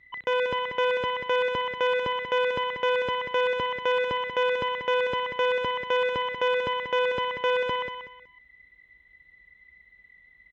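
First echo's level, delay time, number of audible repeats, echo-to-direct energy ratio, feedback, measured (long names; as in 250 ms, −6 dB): −8.0 dB, 187 ms, 3, −7.5 dB, 26%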